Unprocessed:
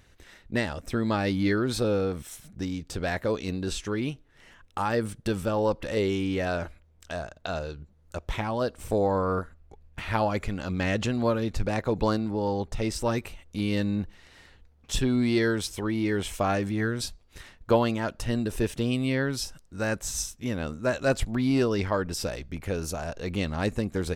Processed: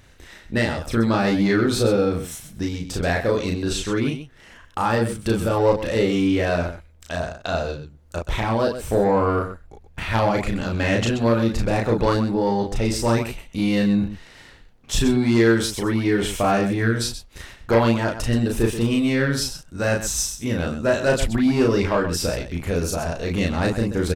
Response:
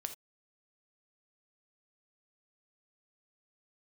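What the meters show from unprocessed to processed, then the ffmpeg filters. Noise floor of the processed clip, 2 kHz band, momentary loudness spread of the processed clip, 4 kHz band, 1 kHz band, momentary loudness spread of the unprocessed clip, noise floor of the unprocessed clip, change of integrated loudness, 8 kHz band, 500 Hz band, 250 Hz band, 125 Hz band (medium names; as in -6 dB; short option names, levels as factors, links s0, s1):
-50 dBFS, +7.0 dB, 10 LU, +7.0 dB, +6.5 dB, 10 LU, -59 dBFS, +6.5 dB, +7.5 dB, +6.5 dB, +7.0 dB, +7.0 dB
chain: -af "aeval=exprs='0.355*sin(PI/2*2*val(0)/0.355)':c=same,aecho=1:1:34.99|128.3:0.794|0.316,volume=0.596"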